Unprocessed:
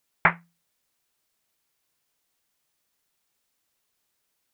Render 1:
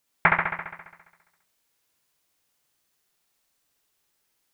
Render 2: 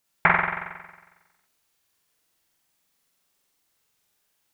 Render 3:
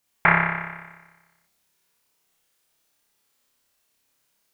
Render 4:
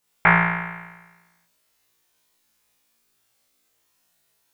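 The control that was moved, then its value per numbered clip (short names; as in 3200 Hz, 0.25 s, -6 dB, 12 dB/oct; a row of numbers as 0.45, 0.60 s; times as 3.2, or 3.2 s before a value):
flutter echo, walls apart: 11.6, 7.8, 5.1, 3 m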